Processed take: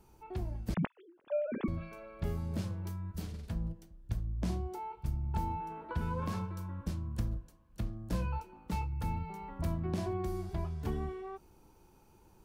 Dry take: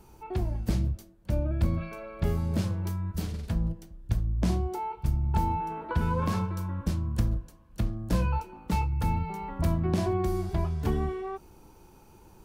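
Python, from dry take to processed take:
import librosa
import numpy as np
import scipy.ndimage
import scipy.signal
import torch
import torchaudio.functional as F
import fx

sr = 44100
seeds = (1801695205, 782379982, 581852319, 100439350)

y = fx.sine_speech(x, sr, at=(0.74, 1.68))
y = y * librosa.db_to_amplitude(-8.0)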